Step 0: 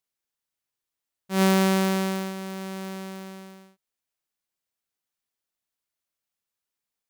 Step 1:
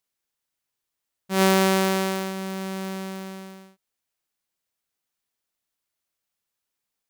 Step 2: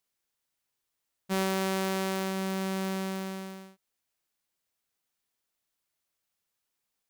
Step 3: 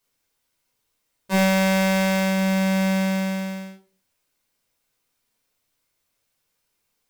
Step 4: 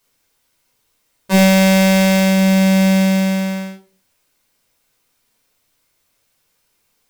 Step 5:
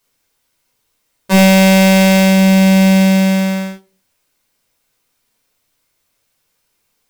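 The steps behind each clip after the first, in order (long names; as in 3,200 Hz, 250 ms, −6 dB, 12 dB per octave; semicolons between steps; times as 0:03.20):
dynamic equaliser 190 Hz, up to −5 dB, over −34 dBFS; level +3.5 dB
downward compressor 5 to 1, threshold −27 dBFS, peak gain reduction 11 dB
convolution reverb RT60 0.30 s, pre-delay 3 ms, DRR −3 dB; level +3.5 dB
dynamic equaliser 1,200 Hz, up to −7 dB, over −37 dBFS, Q 0.99; level +9 dB
leveller curve on the samples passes 1; level +1 dB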